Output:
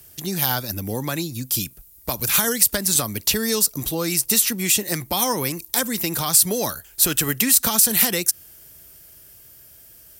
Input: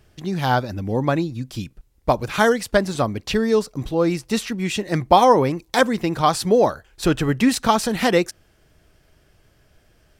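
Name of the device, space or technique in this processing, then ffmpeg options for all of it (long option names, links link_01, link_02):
FM broadcast chain: -filter_complex "[0:a]highpass=42,dynaudnorm=framelen=300:gausssize=11:maxgain=11.5dB,acrossover=split=280|1300[link_01][link_02][link_03];[link_01]acompressor=threshold=-27dB:ratio=4[link_04];[link_02]acompressor=threshold=-28dB:ratio=4[link_05];[link_03]acompressor=threshold=-26dB:ratio=4[link_06];[link_04][link_05][link_06]amix=inputs=3:normalize=0,aemphasis=mode=production:type=50fm,alimiter=limit=-12.5dB:level=0:latency=1:release=87,asoftclip=type=hard:threshold=-13.5dB,lowpass=frequency=15000:width=0.5412,lowpass=frequency=15000:width=1.3066,aemphasis=mode=production:type=50fm"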